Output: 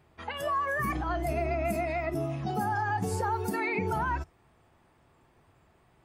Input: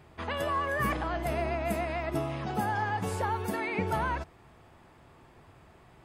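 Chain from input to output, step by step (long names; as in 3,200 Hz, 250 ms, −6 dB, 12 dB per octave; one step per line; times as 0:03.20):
brickwall limiter −23.5 dBFS, peak gain reduction 6 dB
noise reduction from a noise print of the clip's start 11 dB
level +3.5 dB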